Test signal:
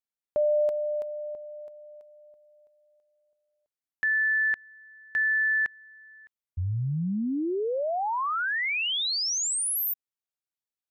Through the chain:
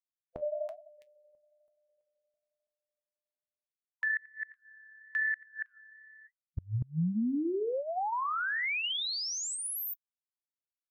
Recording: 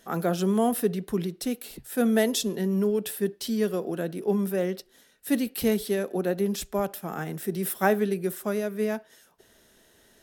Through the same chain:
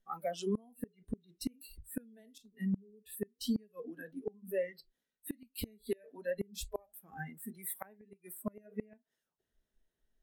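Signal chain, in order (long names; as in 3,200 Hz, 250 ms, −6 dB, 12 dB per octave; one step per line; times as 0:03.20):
bass and treble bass +6 dB, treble −4 dB
flanger 1.1 Hz, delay 4.7 ms, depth 8.8 ms, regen −72%
noise reduction from a noise print of the clip's start 25 dB
dynamic equaliser 170 Hz, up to +3 dB, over −40 dBFS, Q 4.6
downward compressor 6 to 1, threshold −26 dBFS
gate with flip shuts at −24 dBFS, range −29 dB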